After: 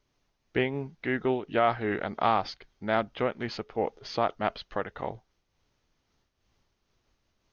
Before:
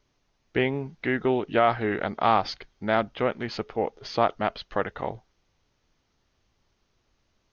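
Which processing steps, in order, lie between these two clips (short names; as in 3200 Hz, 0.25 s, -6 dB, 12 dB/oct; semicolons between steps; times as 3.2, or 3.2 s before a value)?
noise-modulated level, depth 65%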